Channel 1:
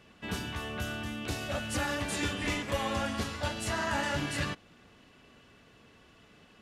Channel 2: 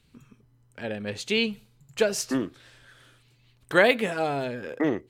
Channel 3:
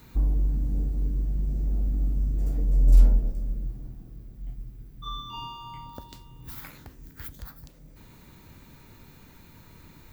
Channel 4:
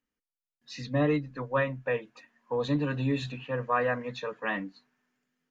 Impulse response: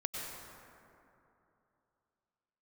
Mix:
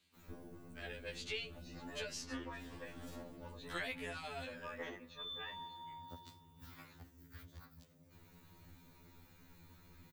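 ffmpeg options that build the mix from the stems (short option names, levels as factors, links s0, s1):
-filter_complex "[0:a]adynamicsmooth=sensitivity=2.5:basefreq=550,volume=0.112[s0];[1:a]highpass=f=1200:p=1,volume=0.631[s1];[2:a]adelay=150,volume=0.398[s2];[3:a]adelay=950,volume=0.178,asplit=2[s3][s4];[s4]volume=0.126[s5];[4:a]atrim=start_sample=2205[s6];[s5][s6]afir=irnorm=-1:irlink=0[s7];[s0][s1][s2][s3][s7]amix=inputs=5:normalize=0,acrossover=split=190|2100|5900[s8][s9][s10][s11];[s8]acompressor=threshold=0.0141:ratio=4[s12];[s9]acompressor=threshold=0.00794:ratio=4[s13];[s10]acompressor=threshold=0.00708:ratio=4[s14];[s11]acompressor=threshold=0.001:ratio=4[s15];[s12][s13][s14][s15]amix=inputs=4:normalize=0,aeval=exprs='0.075*(cos(1*acos(clip(val(0)/0.075,-1,1)))-cos(1*PI/2))+0.00211*(cos(4*acos(clip(val(0)/0.075,-1,1)))-cos(4*PI/2))':c=same,afftfilt=real='re*2*eq(mod(b,4),0)':imag='im*2*eq(mod(b,4),0)':win_size=2048:overlap=0.75"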